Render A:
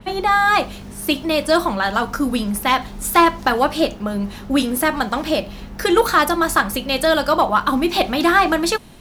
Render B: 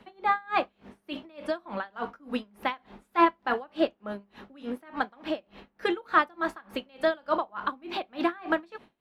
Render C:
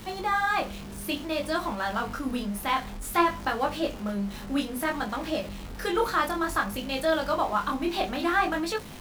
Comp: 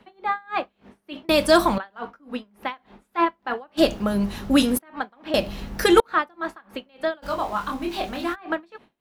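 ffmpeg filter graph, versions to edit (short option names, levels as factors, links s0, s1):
-filter_complex "[0:a]asplit=3[s0][s1][s2];[1:a]asplit=5[s3][s4][s5][s6][s7];[s3]atrim=end=1.292[s8];[s0]atrim=start=1.288:end=1.782[s9];[s4]atrim=start=1.778:end=3.79[s10];[s1]atrim=start=3.77:end=4.79[s11];[s5]atrim=start=4.77:end=5.342[s12];[s2]atrim=start=5.338:end=6.002[s13];[s6]atrim=start=5.998:end=7.26[s14];[2:a]atrim=start=7.22:end=8.36[s15];[s7]atrim=start=8.32[s16];[s8][s9]acrossfade=d=0.004:c1=hsin:c2=hsin[s17];[s17][s10]acrossfade=d=0.004:c1=hsin:c2=hsin[s18];[s18][s11]acrossfade=d=0.02:c1=tri:c2=tri[s19];[s19][s12]acrossfade=d=0.02:c1=tri:c2=tri[s20];[s20][s13]acrossfade=d=0.004:c1=hsin:c2=hsin[s21];[s21][s14]acrossfade=d=0.004:c1=hsin:c2=hsin[s22];[s22][s15]acrossfade=d=0.04:c1=tri:c2=tri[s23];[s23][s16]acrossfade=d=0.04:c1=tri:c2=tri"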